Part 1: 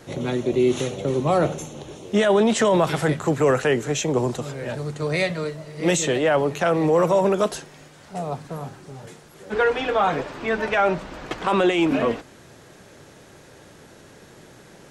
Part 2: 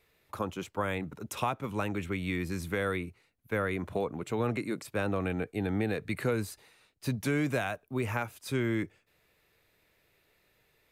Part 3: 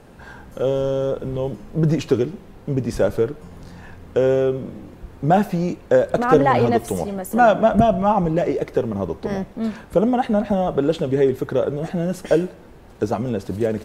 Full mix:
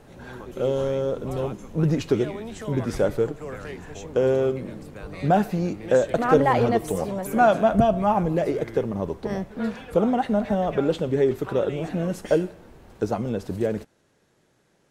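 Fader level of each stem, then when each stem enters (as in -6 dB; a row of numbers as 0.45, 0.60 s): -18.0, -10.5, -3.5 dB; 0.00, 0.00, 0.00 s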